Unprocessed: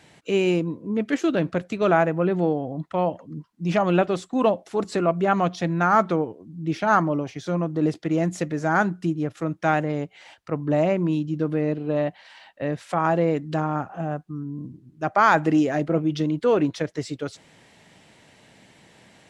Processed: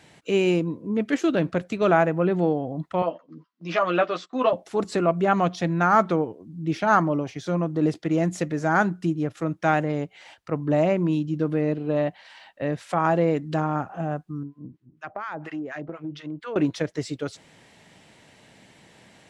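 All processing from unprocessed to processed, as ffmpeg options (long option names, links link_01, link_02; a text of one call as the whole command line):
ffmpeg -i in.wav -filter_complex "[0:a]asettb=1/sr,asplit=3[link_01][link_02][link_03];[link_01]atrim=end=3.024[link_04];[link_02]atrim=start=3.02:end=4.53,asetpts=PTS-STARTPTS,afade=type=in:duration=0.004:curve=qsin,afade=type=out:start_time=1.506:duration=0.004:curve=qsin,agate=range=-9dB:threshold=-42dB:ratio=16:release=100:detection=peak,highpass=390,equalizer=frequency=410:width_type=q:width=4:gain=-4,equalizer=frequency=830:width_type=q:width=4:gain=-7,equalizer=frequency=1200:width_type=q:width=4:gain=5,lowpass=frequency=5400:width=0.5412,lowpass=frequency=5400:width=1.3066,asplit=2[link_05][link_06];[link_06]adelay=12,volume=-4dB[link_07];[link_05][link_07]amix=inputs=2:normalize=0,atrim=end_sample=66591[link_08];[link_03]atrim=start=4.526[link_09];[link_04][link_08]acrossfade=duration=0.004:curve1=hsin:curve2=qsin[link_10];[link_10][link_09]acrossfade=duration=0.004:curve1=qsin:curve2=hsin,asettb=1/sr,asplit=3[link_11][link_12][link_13];[link_11]atrim=end=14.434[link_14];[link_12]atrim=start=14.43:end=16.56,asetpts=PTS-STARTPTS,afade=type=in:duration=0.004:curve=qsin,afade=type=out:start_time=2.126:duration=0.004:curve=qsin,bass=frequency=250:gain=-3,treble=frequency=4000:gain=-12,acrossover=split=1000[link_15][link_16];[link_15]aeval=exprs='val(0)*(1-1/2+1/2*cos(2*PI*4.2*n/s))':channel_layout=same[link_17];[link_16]aeval=exprs='val(0)*(1-1/2-1/2*cos(2*PI*4.2*n/s))':channel_layout=same[link_18];[link_17][link_18]amix=inputs=2:normalize=0,acompressor=threshold=-29dB:ratio=6:attack=3.2:release=140:knee=1:detection=peak[link_19];[link_13]atrim=start=16.556[link_20];[link_14][link_19]acrossfade=duration=0.004:curve1=hsin:curve2=qsin[link_21];[link_21][link_20]acrossfade=duration=0.004:curve1=qsin:curve2=hsin" out.wav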